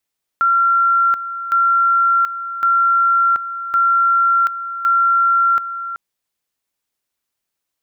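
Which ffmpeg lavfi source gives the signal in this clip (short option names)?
-f lavfi -i "aevalsrc='pow(10,(-11-12*gte(mod(t,1.11),0.73))/20)*sin(2*PI*1370*t)':d=5.55:s=44100"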